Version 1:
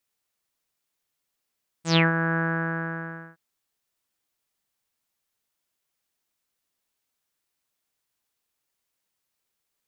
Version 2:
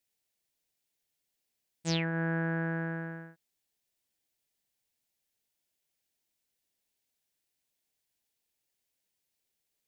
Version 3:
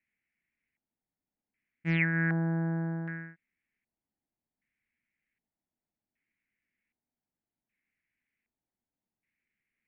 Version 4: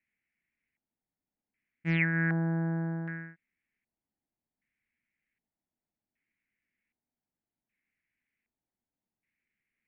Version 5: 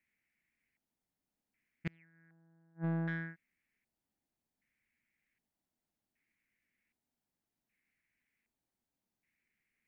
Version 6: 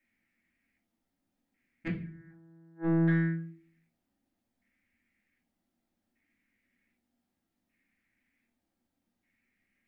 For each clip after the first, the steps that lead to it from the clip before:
bell 1200 Hz -11 dB 0.66 oct; compressor 10:1, threshold -25 dBFS, peak gain reduction 9.5 dB; gain -2 dB
EQ curve 140 Hz 0 dB, 230 Hz +6 dB, 490 Hz -10 dB, 970 Hz -9 dB, 2200 Hz +4 dB, 3600 Hz -12 dB; LFO low-pass square 0.65 Hz 830–2100 Hz; gain +1.5 dB
nothing audible
flipped gate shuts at -25 dBFS, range -40 dB; soft clip -29 dBFS, distortion -20 dB; gain +1.5 dB
reverb RT60 0.45 s, pre-delay 3 ms, DRR -5 dB

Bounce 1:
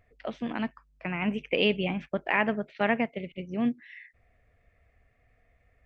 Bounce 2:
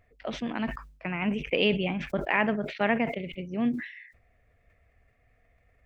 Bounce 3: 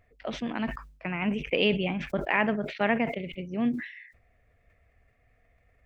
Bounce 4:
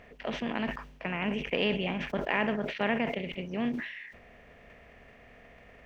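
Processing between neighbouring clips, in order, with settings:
sustainer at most 99 dB/s
nothing audible
per-bin compression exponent 0.6; gain -6 dB

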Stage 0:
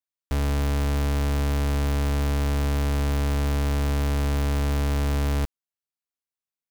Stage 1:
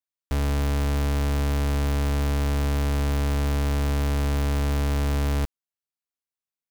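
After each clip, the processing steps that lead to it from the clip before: nothing audible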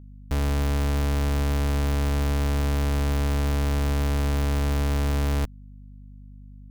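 hum 50 Hz, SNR 20 dB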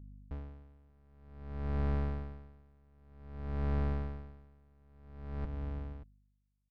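tape spacing loss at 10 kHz 41 dB; echo 0.581 s -8.5 dB; dB-linear tremolo 0.53 Hz, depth 34 dB; gain -5.5 dB

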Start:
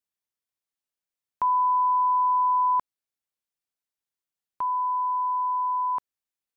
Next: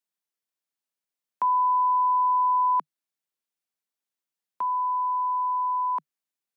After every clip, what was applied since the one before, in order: steep high-pass 150 Hz 96 dB/oct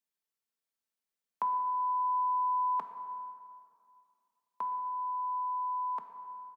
comb 4.5 ms, depth 40%; plate-style reverb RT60 2.4 s, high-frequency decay 0.6×, DRR 5.5 dB; gain -4 dB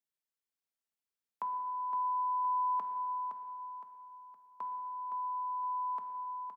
feedback echo 0.515 s, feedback 41%, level -7 dB; gain -5.5 dB

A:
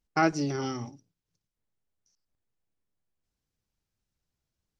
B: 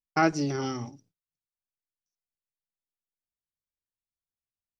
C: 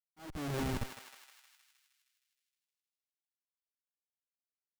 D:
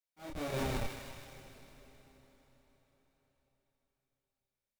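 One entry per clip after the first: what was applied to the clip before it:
gate with hold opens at -52 dBFS; gain +1 dB
Schmitt trigger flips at -29.5 dBFS; auto swell 0.445 s; thinning echo 0.156 s, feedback 68%, high-pass 1000 Hz, level -5.5 dB; gain +1 dB
chorus voices 4, 0.69 Hz, delay 28 ms, depth 3.4 ms; small resonant body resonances 570/2300/3700 Hz, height 9 dB, ringing for 25 ms; reverb RT60 4.7 s, pre-delay 0.118 s, DRR 12.5 dB; gain +3 dB

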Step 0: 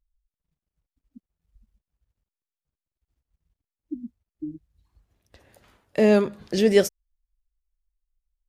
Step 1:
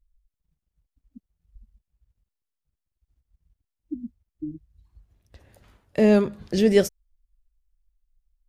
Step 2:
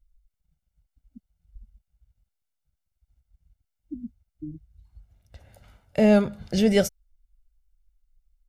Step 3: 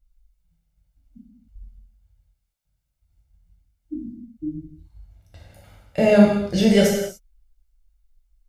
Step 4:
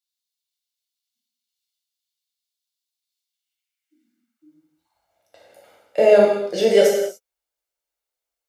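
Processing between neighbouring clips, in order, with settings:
low shelf 150 Hz +11.5 dB; gain -2 dB
comb 1.4 ms, depth 53%
non-linear reverb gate 0.32 s falling, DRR -3.5 dB
high-pass sweep 3800 Hz -> 450 Hz, 3.26–5.52; gain -1 dB

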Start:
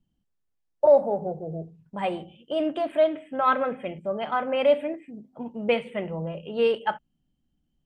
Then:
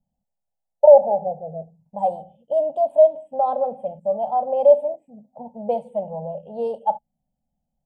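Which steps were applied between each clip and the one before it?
EQ curve 130 Hz 0 dB, 220 Hz +3 dB, 340 Hz -15 dB, 560 Hz +12 dB, 830 Hz +14 dB, 1300 Hz -19 dB, 1900 Hz -30 dB, 4300 Hz -7 dB, 7300 Hz +1 dB; gain -5 dB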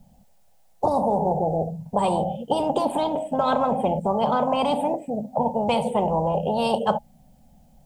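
spectral compressor 10:1; gain -6 dB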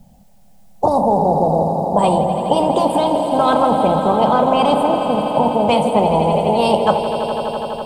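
swelling echo 83 ms, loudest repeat 5, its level -12.5 dB; gain +6.5 dB

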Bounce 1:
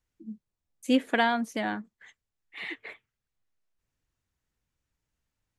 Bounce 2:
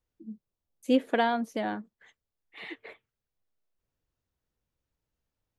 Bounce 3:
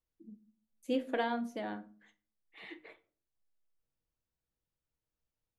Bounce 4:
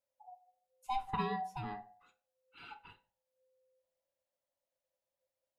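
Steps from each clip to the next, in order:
graphic EQ 500/2000/8000 Hz +5/-4/-6 dB; gain -2 dB
reverb RT60 0.45 s, pre-delay 6 ms, DRR 9 dB; gain -8 dB
band-swap scrambler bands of 500 Hz; gain -2.5 dB

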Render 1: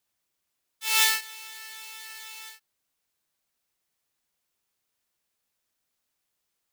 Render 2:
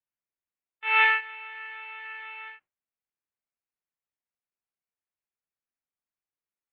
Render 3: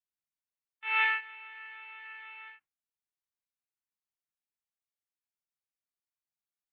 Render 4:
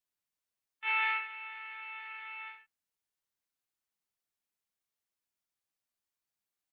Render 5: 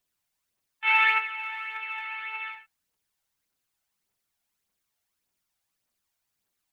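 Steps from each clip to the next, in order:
steep low-pass 2700 Hz 48 dB/oct; gate with hold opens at -42 dBFS; gain +7 dB
bell 490 Hz -8.5 dB 0.99 oct; gain -6 dB
limiter -23.5 dBFS, peak gain reduction 8.5 dB; on a send: early reflections 10 ms -10 dB, 69 ms -8.5 dB; on the sum: gain +2.5 dB
phaser 1.7 Hz, delay 1.5 ms, feedback 42%; gain +8.5 dB

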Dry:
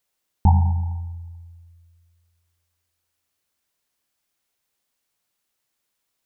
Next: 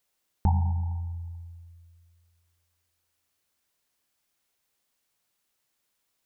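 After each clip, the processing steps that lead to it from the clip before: compressor 1.5:1, threshold -34 dBFS, peak gain reduction 8.5 dB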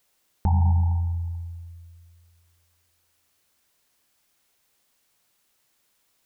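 limiter -21.5 dBFS, peak gain reduction 9 dB; gain +8 dB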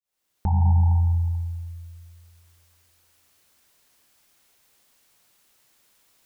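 opening faded in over 1.13 s; gain +6 dB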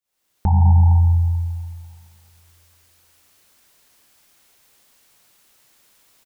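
feedback echo 0.339 s, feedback 57%, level -23.5 dB; gain +5.5 dB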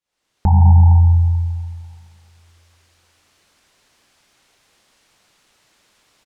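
air absorption 64 m; gain +3.5 dB

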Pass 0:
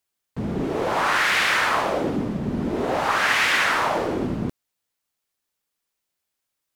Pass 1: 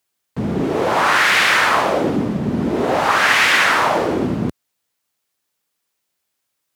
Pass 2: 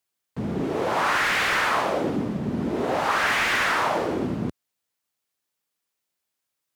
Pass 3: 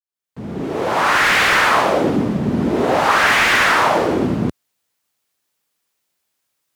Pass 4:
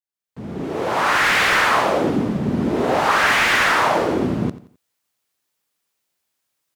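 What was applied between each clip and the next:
HPF 75 Hz; gain +6 dB
slew limiter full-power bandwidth 460 Hz; gain -7 dB
opening faded in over 1.29 s; gain +8.5 dB
feedback echo 87 ms, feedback 34%, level -16 dB; gain -2.5 dB

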